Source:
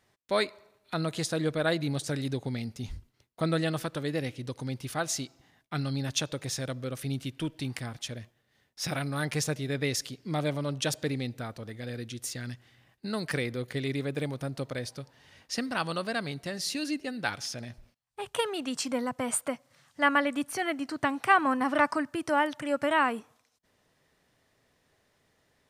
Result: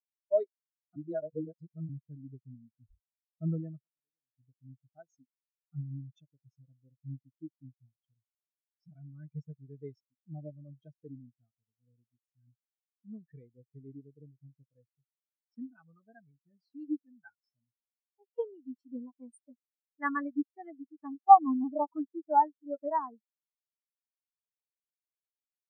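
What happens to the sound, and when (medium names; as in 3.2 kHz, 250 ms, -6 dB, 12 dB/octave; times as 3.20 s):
0.96–1.89 s: reverse
3.79–4.30 s: spectrum-flattening compressor 4:1
21.14–21.87 s: low-pass 1.1 kHz 24 dB/octave
whole clip: band-stop 540 Hz, Q 12; waveshaping leveller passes 1; spectral contrast expander 4:1; trim +4.5 dB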